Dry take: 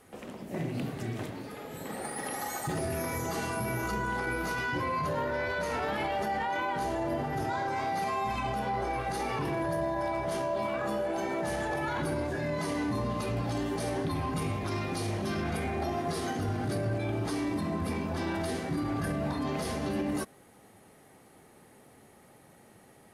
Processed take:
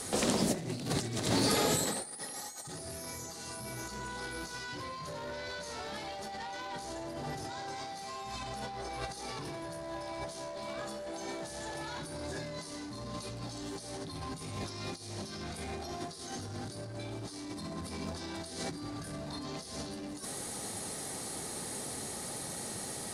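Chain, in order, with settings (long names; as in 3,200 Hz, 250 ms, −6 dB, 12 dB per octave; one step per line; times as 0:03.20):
sine wavefolder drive 4 dB, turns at −21 dBFS
flat-topped bell 6,100 Hz +13.5 dB
compressor whose output falls as the input rises −32 dBFS, ratio −0.5
level −4 dB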